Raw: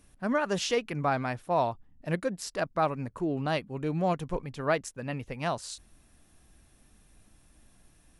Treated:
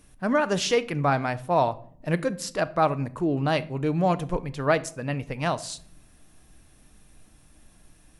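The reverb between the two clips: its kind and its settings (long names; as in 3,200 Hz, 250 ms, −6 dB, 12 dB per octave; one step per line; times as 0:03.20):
rectangular room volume 760 cubic metres, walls furnished, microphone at 0.49 metres
level +4.5 dB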